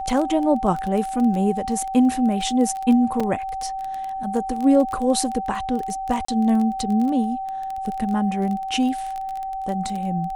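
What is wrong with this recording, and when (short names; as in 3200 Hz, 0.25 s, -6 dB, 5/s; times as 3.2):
crackle 17/s -25 dBFS
tone 770 Hz -26 dBFS
3.2 gap 4.4 ms
6.25–6.28 gap 34 ms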